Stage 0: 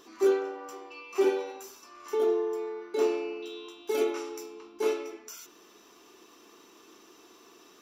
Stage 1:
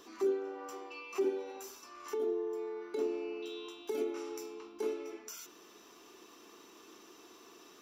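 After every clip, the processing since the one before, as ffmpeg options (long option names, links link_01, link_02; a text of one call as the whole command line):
ffmpeg -i in.wav -filter_complex "[0:a]acrossover=split=330[link_01][link_02];[link_02]acompressor=threshold=-40dB:ratio=5[link_03];[link_01][link_03]amix=inputs=2:normalize=0,volume=-1dB" out.wav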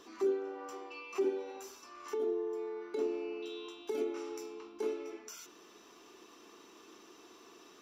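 ffmpeg -i in.wav -af "highshelf=frequency=11000:gain=-10" out.wav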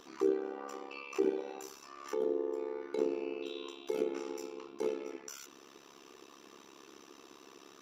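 ffmpeg -i in.wav -af "tremolo=f=69:d=0.919,volume=5dB" out.wav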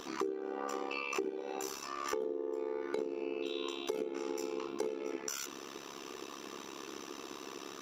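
ffmpeg -i in.wav -af "acompressor=threshold=-42dB:ratio=20,volume=9.5dB" out.wav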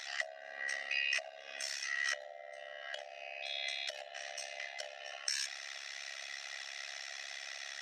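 ffmpeg -i in.wav -af "afftfilt=real='real(if(between(b,1,1008),(2*floor((b-1)/48)+1)*48-b,b),0)':imag='imag(if(between(b,1,1008),(2*floor((b-1)/48)+1)*48-b,b),0)*if(between(b,1,1008),-1,1)':win_size=2048:overlap=0.75,asuperpass=centerf=3300:order=4:qfactor=0.61,volume=5.5dB" out.wav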